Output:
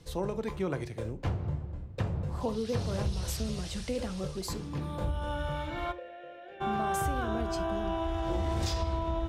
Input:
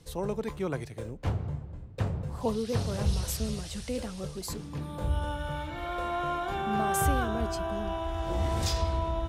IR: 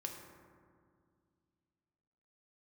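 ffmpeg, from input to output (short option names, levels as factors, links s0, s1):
-filter_complex "[0:a]acompressor=threshold=0.0355:ratio=5,asplit=3[s0][s1][s2];[s0]afade=t=out:st=5.91:d=0.02[s3];[s1]asplit=3[s4][s5][s6];[s4]bandpass=f=530:t=q:w=8,volume=1[s7];[s5]bandpass=f=1840:t=q:w=8,volume=0.501[s8];[s6]bandpass=f=2480:t=q:w=8,volume=0.355[s9];[s7][s8][s9]amix=inputs=3:normalize=0,afade=t=in:st=5.91:d=0.02,afade=t=out:st=6.6:d=0.02[s10];[s2]afade=t=in:st=6.6:d=0.02[s11];[s3][s10][s11]amix=inputs=3:normalize=0,asplit=2[s12][s13];[1:a]atrim=start_sample=2205,atrim=end_sample=3528,lowpass=7800[s14];[s13][s14]afir=irnorm=-1:irlink=0,volume=1.06[s15];[s12][s15]amix=inputs=2:normalize=0,volume=0.708"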